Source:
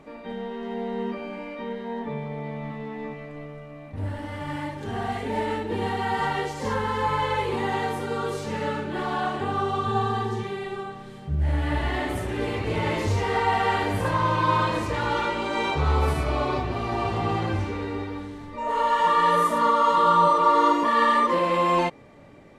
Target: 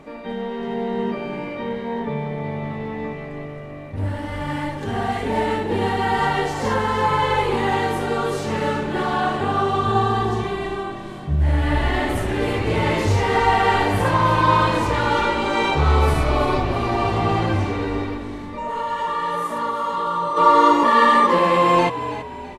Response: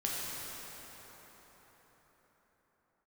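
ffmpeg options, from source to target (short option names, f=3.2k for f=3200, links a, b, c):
-filter_complex "[0:a]asplit=3[a][b][c];[a]afade=t=out:st=18.14:d=0.02[d];[b]acompressor=threshold=-35dB:ratio=2,afade=t=in:st=18.14:d=0.02,afade=t=out:st=20.36:d=0.02[e];[c]afade=t=in:st=20.36:d=0.02[f];[d][e][f]amix=inputs=3:normalize=0,asplit=5[g][h][i][j][k];[h]adelay=328,afreqshift=-50,volume=-12dB[l];[i]adelay=656,afreqshift=-100,volume=-19.1dB[m];[j]adelay=984,afreqshift=-150,volume=-26.3dB[n];[k]adelay=1312,afreqshift=-200,volume=-33.4dB[o];[g][l][m][n][o]amix=inputs=5:normalize=0,volume=5.5dB"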